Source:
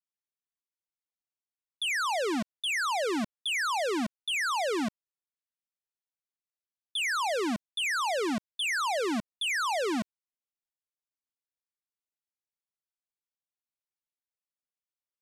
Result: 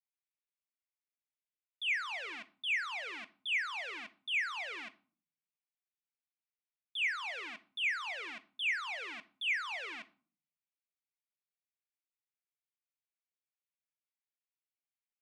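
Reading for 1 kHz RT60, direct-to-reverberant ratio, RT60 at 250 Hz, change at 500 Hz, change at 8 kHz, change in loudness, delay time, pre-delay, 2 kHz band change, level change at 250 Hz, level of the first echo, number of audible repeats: 0.45 s, 11.5 dB, 0.75 s, -21.5 dB, -19.0 dB, -6.5 dB, no echo, 4 ms, -3.0 dB, -27.0 dB, no echo, no echo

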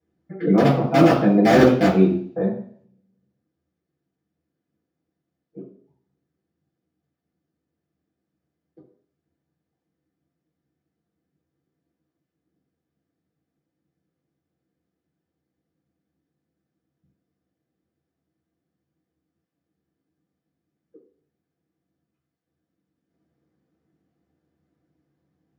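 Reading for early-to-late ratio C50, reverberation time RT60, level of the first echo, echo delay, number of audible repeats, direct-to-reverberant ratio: 5.5 dB, 0.60 s, no echo, no echo, no echo, -12.5 dB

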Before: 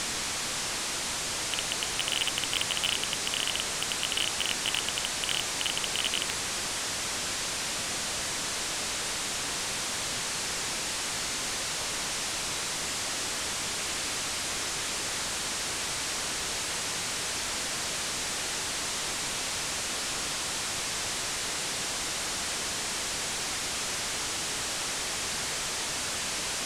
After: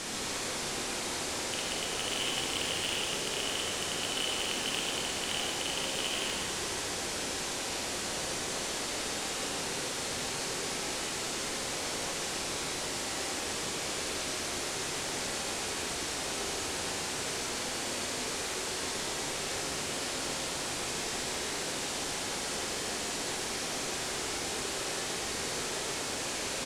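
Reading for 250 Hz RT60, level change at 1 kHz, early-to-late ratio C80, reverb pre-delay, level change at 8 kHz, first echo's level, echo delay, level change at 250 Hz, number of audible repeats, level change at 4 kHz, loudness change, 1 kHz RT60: 1.9 s, -1.5 dB, 1.0 dB, 16 ms, -4.0 dB, -6.0 dB, 121 ms, +2.5 dB, 1, -3.5 dB, -3.5 dB, 1.5 s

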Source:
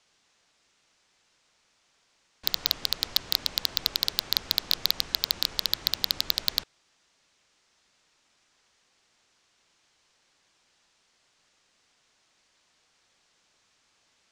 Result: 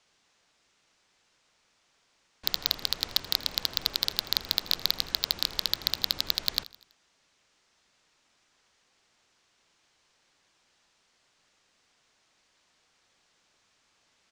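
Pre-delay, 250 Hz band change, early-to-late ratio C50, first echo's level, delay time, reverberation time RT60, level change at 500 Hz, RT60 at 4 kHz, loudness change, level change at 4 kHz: no reverb, 0.0 dB, no reverb, -19.5 dB, 82 ms, no reverb, 0.0 dB, no reverb, -1.5 dB, -1.5 dB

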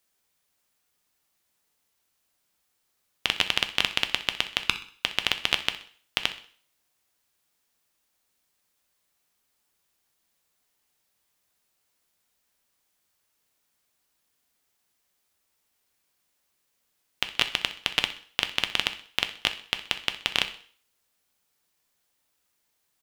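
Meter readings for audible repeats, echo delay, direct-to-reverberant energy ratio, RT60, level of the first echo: 2, 63 ms, 8.0 dB, 0.50 s, -16.5 dB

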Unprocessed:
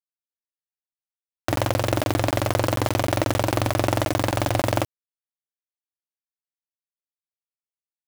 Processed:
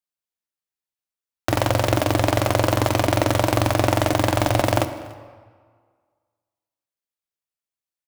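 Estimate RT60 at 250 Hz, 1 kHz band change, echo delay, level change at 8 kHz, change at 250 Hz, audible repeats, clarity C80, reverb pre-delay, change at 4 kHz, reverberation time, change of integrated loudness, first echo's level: 1.6 s, +3.5 dB, 290 ms, +2.5 dB, +3.0 dB, 1, 12.5 dB, 15 ms, +3.0 dB, 1.7 s, +3.0 dB, -23.0 dB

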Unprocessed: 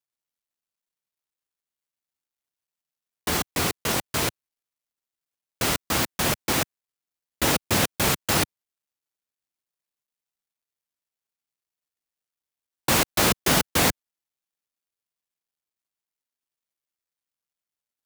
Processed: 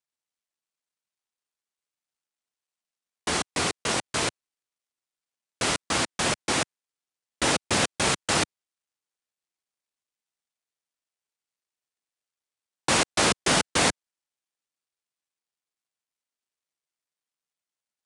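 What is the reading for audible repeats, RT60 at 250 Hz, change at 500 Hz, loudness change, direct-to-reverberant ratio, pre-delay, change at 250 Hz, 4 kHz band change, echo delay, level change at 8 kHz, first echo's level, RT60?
no echo, no reverb, -1.0 dB, -1.5 dB, no reverb, no reverb, -2.5 dB, 0.0 dB, no echo, -0.5 dB, no echo, no reverb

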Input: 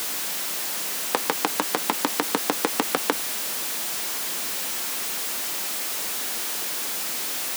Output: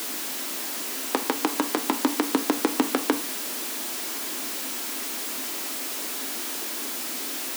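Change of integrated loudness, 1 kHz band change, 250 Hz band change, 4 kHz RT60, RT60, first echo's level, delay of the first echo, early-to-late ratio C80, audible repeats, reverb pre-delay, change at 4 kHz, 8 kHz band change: -2.0 dB, -2.0 dB, +6.0 dB, 0.30 s, 0.40 s, no echo, no echo, 22.0 dB, no echo, 3 ms, -3.0 dB, -3.5 dB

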